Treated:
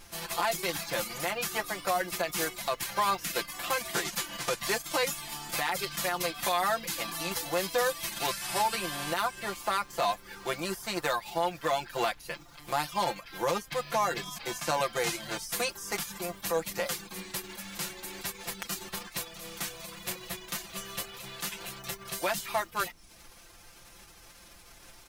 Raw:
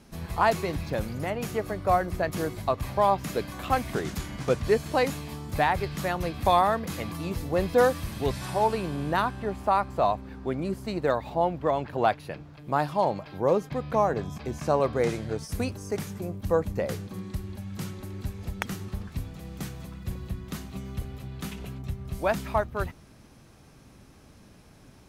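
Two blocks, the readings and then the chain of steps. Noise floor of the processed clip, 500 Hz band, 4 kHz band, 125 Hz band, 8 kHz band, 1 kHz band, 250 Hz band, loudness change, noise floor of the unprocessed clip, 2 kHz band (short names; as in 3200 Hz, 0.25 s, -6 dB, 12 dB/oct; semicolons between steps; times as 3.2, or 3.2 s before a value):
-54 dBFS, -7.0 dB, +7.0 dB, -13.5 dB, +9.5 dB, -4.5 dB, -9.0 dB, -3.5 dB, -53 dBFS, +1.5 dB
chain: spectral whitening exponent 0.6; reverb removal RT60 0.52 s; HPF 690 Hz 6 dB/oct; comb 5.8 ms, depth 92%; limiter -18 dBFS, peak gain reduction 11 dB; added noise brown -58 dBFS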